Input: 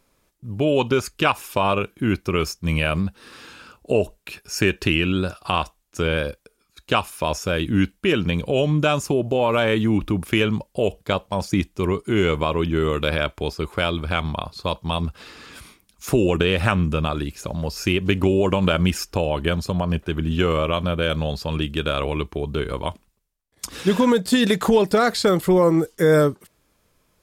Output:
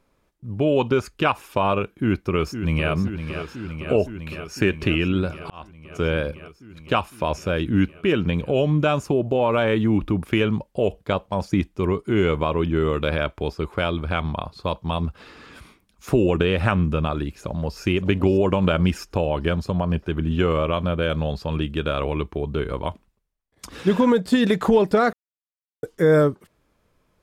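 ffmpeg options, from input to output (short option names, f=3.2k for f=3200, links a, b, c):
-filter_complex "[0:a]asplit=2[a][b];[b]afade=t=in:st=1.89:d=0.01,afade=t=out:st=2.91:d=0.01,aecho=0:1:510|1020|1530|2040|2550|3060|3570|4080|4590|5100|5610|6120:0.354813|0.283851|0.227081|0.181664|0.145332|0.116265|0.0930122|0.0744098|0.0595278|0.0476222|0.0380978|0.0304782[c];[a][c]amix=inputs=2:normalize=0,asplit=2[d][e];[e]afade=t=in:st=17.39:d=0.01,afade=t=out:st=17.8:d=0.01,aecho=0:1:570|1140|1710|2280|2850|3420:0.199526|0.109739|0.0603567|0.0331962|0.0182579|0.0100418[f];[d][f]amix=inputs=2:normalize=0,asplit=4[g][h][i][j];[g]atrim=end=5.5,asetpts=PTS-STARTPTS,afade=t=out:st=5.496:d=0.004:c=hsin[k];[h]atrim=start=5.5:end=25.13,asetpts=PTS-STARTPTS,afade=t=in:d=0.53,afade=t=out:st=19.626:d=0.004:c=hsin[l];[i]atrim=start=25.13:end=25.83,asetpts=PTS-STARTPTS,volume=0[m];[j]atrim=start=25.83,asetpts=PTS-STARTPTS,afade=t=in:d=0.004:c=hsin[n];[k][l][m][n]concat=n=4:v=0:a=1,highshelf=f=3.7k:g=-12"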